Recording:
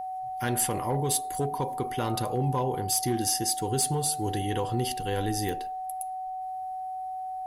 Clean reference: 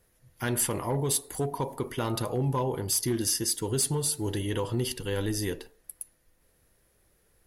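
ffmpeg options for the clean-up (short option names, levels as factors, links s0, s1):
-af "adeclick=t=4,bandreject=f=750:w=30"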